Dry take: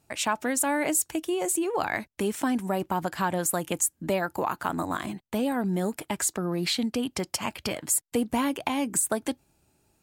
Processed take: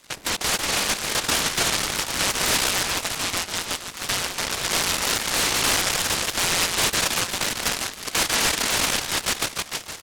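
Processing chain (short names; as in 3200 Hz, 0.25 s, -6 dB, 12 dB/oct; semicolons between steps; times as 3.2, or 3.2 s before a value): regenerating reverse delay 0.315 s, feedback 56%, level -11.5 dB; in parallel at 0 dB: level quantiser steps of 19 dB; 2.83–4.46 on the sum: HPF 490 Hz 6 dB/oct; on a send: echo 0.146 s -7.5 dB; on the sum: de-esser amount 70%; tilt -4.5 dB/oct; limiter -13.5 dBFS, peak gain reduction 9 dB; inverted band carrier 3000 Hz; noise-modulated delay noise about 1400 Hz, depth 0.16 ms; gain -2 dB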